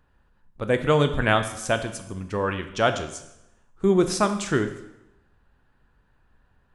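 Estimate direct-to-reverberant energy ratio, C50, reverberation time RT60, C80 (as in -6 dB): 8.0 dB, 10.5 dB, 0.90 s, 13.0 dB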